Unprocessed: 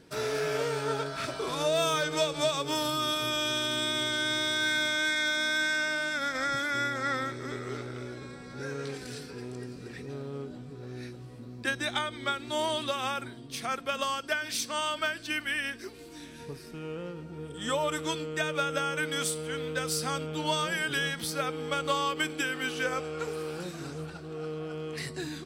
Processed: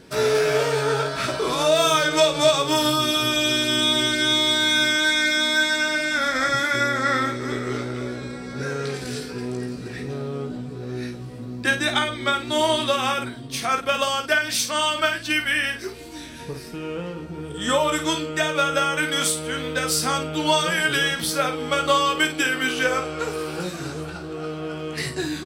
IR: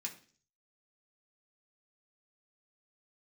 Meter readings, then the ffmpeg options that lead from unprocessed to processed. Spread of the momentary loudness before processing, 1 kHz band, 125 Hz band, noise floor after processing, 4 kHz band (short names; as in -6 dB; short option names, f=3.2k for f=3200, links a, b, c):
15 LU, +9.0 dB, +7.5 dB, -36 dBFS, +9.5 dB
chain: -af "aecho=1:1:16|53:0.447|0.398,volume=8dB"